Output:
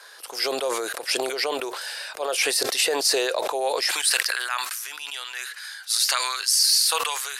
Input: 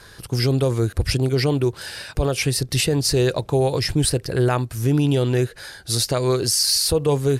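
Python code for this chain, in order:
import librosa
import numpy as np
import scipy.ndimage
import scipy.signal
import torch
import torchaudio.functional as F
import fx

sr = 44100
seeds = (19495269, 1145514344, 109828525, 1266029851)

y = fx.highpass(x, sr, hz=fx.steps((0.0, 550.0), (3.91, 1200.0)), slope=24)
y = fx.sustainer(y, sr, db_per_s=28.0)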